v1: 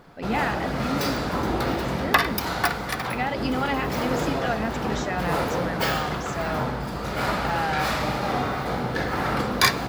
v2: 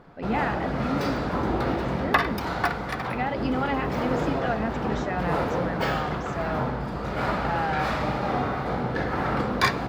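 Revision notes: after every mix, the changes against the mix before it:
master: add low-pass 1.9 kHz 6 dB/octave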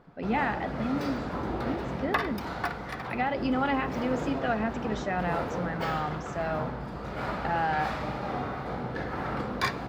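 background -6.5 dB

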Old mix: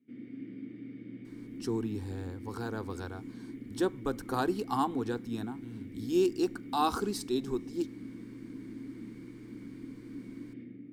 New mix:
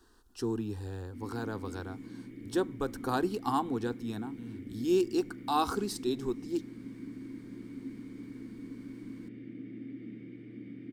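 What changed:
speech: entry -1.25 s; background: entry +1.05 s

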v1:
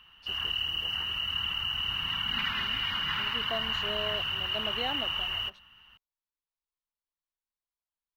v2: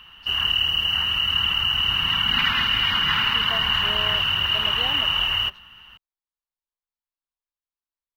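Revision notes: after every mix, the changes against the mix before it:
background +10.0 dB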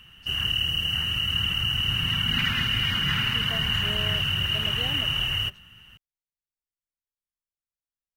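master: add graphic EQ 125/1000/4000/8000 Hz +9/-12/-8/+9 dB

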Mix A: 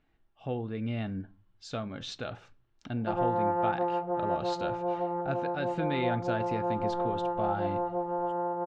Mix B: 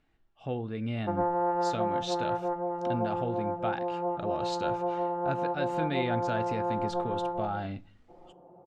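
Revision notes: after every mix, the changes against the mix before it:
background: entry -2.00 s; master: remove distance through air 68 m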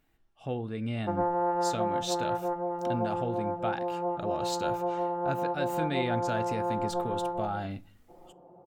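master: remove low-pass 4.7 kHz 12 dB/octave

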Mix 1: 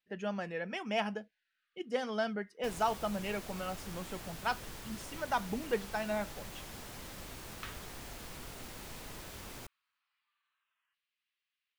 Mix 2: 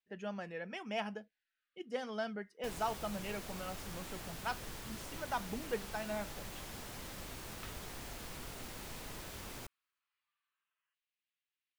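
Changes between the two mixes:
speech -5.0 dB; second sound -6.5 dB

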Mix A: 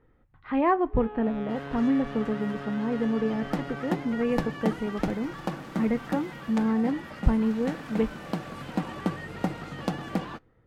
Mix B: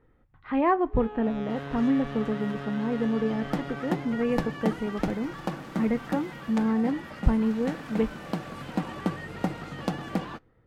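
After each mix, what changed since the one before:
first sound: remove band-pass 140–3000 Hz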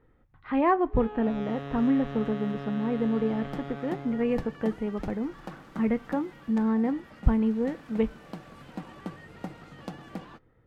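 second sound -9.5 dB

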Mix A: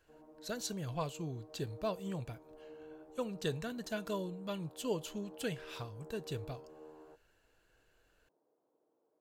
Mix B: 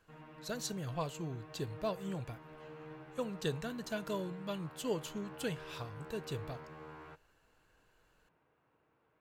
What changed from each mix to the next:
background: remove Butterworth band-pass 450 Hz, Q 1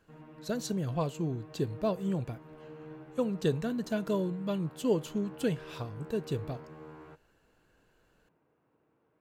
background -4.5 dB; master: add peaking EQ 260 Hz +10 dB 2.8 oct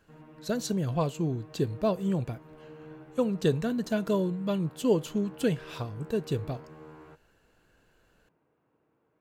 speech +3.5 dB

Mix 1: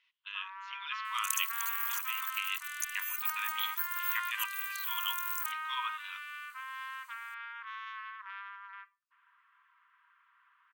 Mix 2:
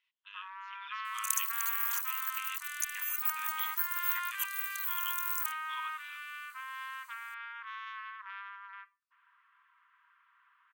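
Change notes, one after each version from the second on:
speech -8.0 dB; second sound: add peaking EQ 15 kHz +2.5 dB 1.8 oct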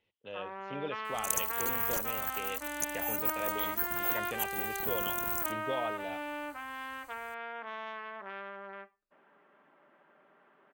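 master: remove brick-wall FIR high-pass 940 Hz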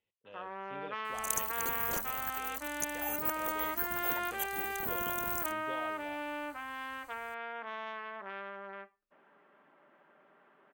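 speech -9.5 dB; second sound: add peaking EQ 15 kHz -2.5 dB 1.8 oct

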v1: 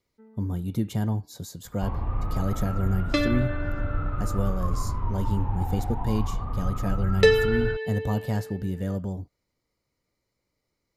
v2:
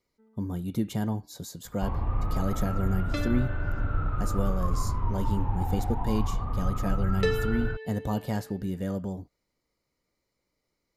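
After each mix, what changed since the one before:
speech: add peaking EQ 97 Hz -6.5 dB 0.81 oct; second sound -9.5 dB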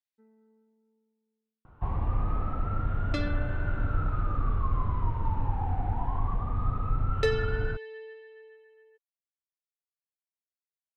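speech: muted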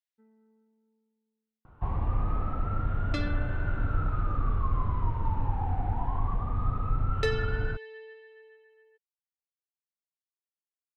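second sound: add peaking EQ 510 Hz -4 dB 0.83 oct

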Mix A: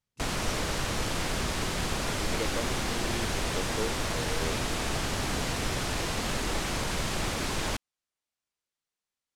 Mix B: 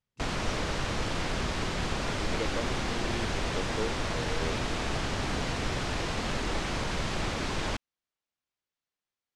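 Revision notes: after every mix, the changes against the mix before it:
master: add distance through air 76 m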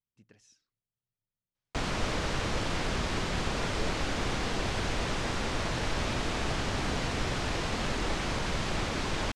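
speech -10.0 dB; background: entry +1.55 s

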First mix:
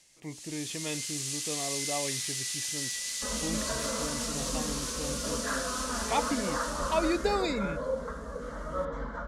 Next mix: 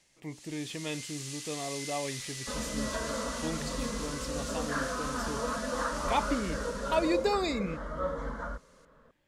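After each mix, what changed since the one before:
first sound: add treble shelf 3.3 kHz -9.5 dB; second sound: entry -0.75 s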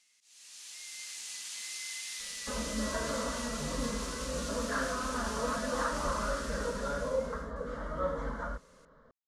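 speech: muted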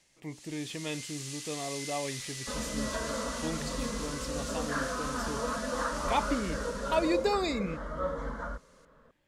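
speech: unmuted

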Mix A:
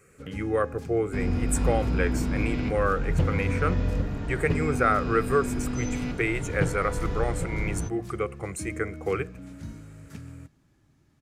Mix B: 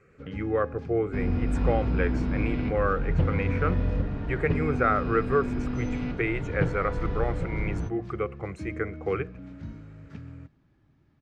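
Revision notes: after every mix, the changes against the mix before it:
master: add distance through air 220 m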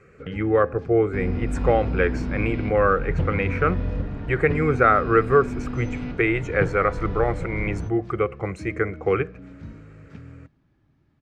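speech +7.0 dB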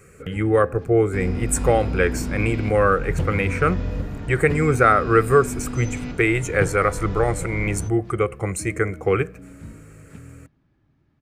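speech: add bass shelf 170 Hz +6.5 dB; first sound: add distance through air 230 m; master: remove distance through air 220 m

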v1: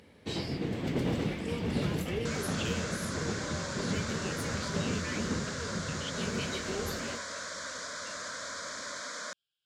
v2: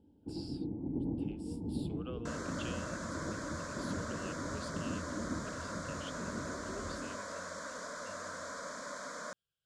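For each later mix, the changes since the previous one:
speech +3.5 dB; first sound: add cascade formant filter u; master: remove frequency weighting D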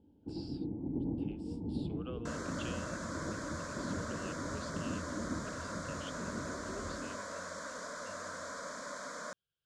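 speech: add low-pass 5.1 kHz 12 dB/octave

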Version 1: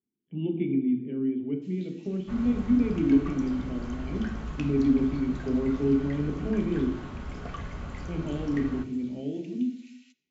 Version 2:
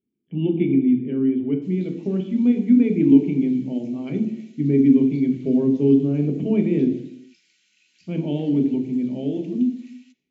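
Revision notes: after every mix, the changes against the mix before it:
speech +8.0 dB; second sound: muted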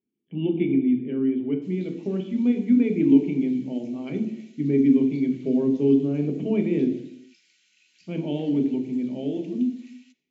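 master: add bass shelf 210 Hz -8.5 dB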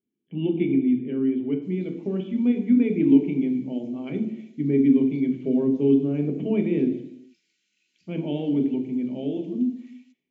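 background -9.5 dB

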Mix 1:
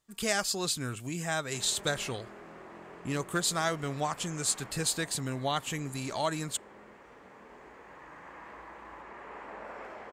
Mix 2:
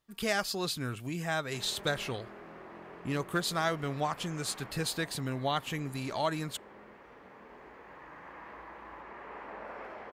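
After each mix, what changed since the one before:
master: add peaking EQ 7.6 kHz -11 dB 0.72 oct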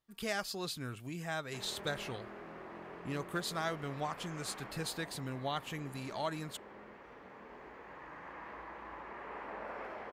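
speech -6.0 dB

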